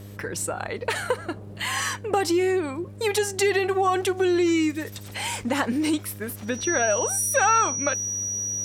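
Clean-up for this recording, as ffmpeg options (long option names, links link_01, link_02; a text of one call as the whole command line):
ffmpeg -i in.wav -af "bandreject=frequency=101.1:width_type=h:width=4,bandreject=frequency=202.2:width_type=h:width=4,bandreject=frequency=303.3:width_type=h:width=4,bandreject=frequency=404.4:width_type=h:width=4,bandreject=frequency=505.5:width_type=h:width=4,bandreject=frequency=606.6:width_type=h:width=4,bandreject=frequency=5800:width=30" out.wav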